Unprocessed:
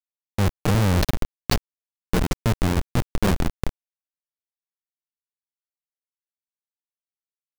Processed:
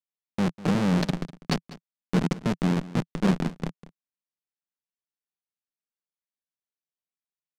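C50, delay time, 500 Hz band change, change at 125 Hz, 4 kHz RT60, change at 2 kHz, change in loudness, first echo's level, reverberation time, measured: no reverb, 198 ms, -3.0 dB, -5.0 dB, no reverb, -4.5 dB, -2.5 dB, -18.0 dB, no reverb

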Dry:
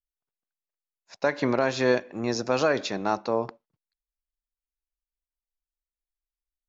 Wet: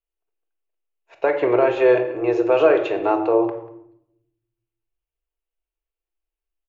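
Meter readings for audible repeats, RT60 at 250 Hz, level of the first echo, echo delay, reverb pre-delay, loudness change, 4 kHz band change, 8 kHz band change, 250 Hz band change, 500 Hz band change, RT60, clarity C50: 1, 1.3 s, -19.5 dB, 190 ms, 4 ms, +7.5 dB, -4.5 dB, no reading, +6.0 dB, +9.0 dB, 0.75 s, 9.5 dB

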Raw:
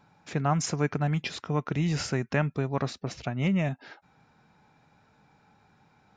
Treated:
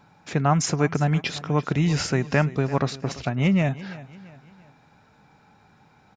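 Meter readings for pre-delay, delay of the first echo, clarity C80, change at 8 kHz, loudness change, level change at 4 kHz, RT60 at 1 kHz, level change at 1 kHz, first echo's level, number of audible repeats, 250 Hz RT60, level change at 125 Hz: no reverb, 340 ms, no reverb, +5.5 dB, +5.5 dB, +5.5 dB, no reverb, +5.5 dB, -17.5 dB, 3, no reverb, +5.5 dB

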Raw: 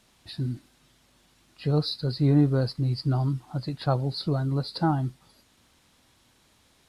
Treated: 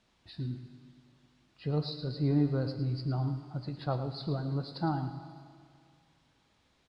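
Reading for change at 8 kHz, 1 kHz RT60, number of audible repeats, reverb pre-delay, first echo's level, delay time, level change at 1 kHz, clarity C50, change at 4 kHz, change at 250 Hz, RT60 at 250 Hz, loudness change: no reading, 2.2 s, 1, 9 ms, -11.5 dB, 110 ms, -6.5 dB, 7.5 dB, -9.5 dB, -6.5 dB, 2.2 s, -7.0 dB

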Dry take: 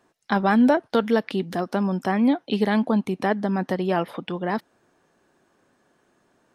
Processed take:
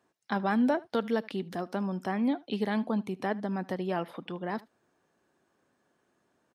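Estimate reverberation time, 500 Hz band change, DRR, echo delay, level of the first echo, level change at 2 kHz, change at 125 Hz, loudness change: no reverb, -8.5 dB, no reverb, 76 ms, -22.5 dB, -8.5 dB, -8.5 dB, -8.5 dB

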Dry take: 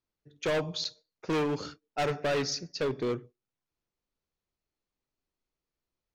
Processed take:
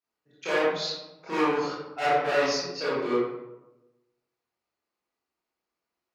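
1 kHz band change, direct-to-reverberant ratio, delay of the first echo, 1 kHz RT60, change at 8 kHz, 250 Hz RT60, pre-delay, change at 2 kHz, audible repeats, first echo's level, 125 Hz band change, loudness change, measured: +8.5 dB, -11.5 dB, no echo, 0.95 s, +0.5 dB, 1.1 s, 20 ms, +7.5 dB, no echo, no echo, -6.5 dB, +4.5 dB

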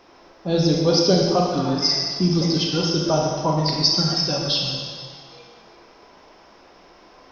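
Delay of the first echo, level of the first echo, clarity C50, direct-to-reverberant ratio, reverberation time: no echo, no echo, 0.5 dB, -1.0 dB, 1.6 s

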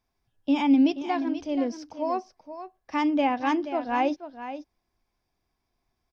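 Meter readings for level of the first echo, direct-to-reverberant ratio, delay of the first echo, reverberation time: -11.5 dB, no reverb, 480 ms, no reverb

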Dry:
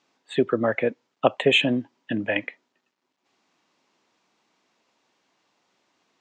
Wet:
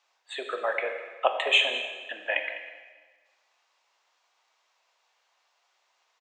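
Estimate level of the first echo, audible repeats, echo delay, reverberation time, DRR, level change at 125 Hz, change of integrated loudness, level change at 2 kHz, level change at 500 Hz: -15.5 dB, 1, 203 ms, 1.4 s, 4.5 dB, under -40 dB, -3.5 dB, -0.5 dB, -7.5 dB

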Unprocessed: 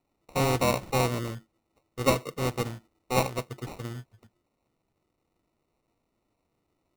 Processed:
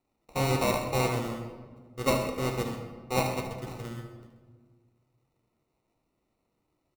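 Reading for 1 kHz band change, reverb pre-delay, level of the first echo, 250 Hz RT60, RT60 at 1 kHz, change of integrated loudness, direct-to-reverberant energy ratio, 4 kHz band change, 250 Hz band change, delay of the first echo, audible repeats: -1.5 dB, 6 ms, -11.0 dB, 1.9 s, 1.4 s, -1.5 dB, 2.5 dB, -1.5 dB, -0.5 dB, 74 ms, 2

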